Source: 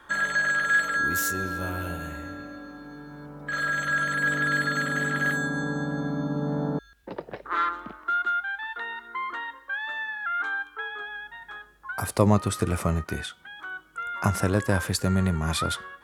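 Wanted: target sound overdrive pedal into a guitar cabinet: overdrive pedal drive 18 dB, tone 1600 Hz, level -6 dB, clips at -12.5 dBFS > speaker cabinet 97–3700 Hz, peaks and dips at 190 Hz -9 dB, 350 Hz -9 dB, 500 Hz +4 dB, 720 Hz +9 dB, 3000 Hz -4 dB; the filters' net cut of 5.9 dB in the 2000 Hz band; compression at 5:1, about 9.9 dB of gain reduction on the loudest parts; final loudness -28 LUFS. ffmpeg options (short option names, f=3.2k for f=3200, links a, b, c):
-filter_complex "[0:a]equalizer=f=2k:t=o:g=-8,acompressor=threshold=-26dB:ratio=5,asplit=2[a][b];[b]highpass=f=720:p=1,volume=18dB,asoftclip=type=tanh:threshold=-12.5dB[c];[a][c]amix=inputs=2:normalize=0,lowpass=f=1.6k:p=1,volume=-6dB,highpass=97,equalizer=f=190:t=q:w=4:g=-9,equalizer=f=350:t=q:w=4:g=-9,equalizer=f=500:t=q:w=4:g=4,equalizer=f=720:t=q:w=4:g=9,equalizer=f=3k:t=q:w=4:g=-4,lowpass=f=3.7k:w=0.5412,lowpass=f=3.7k:w=1.3066,volume=-1dB"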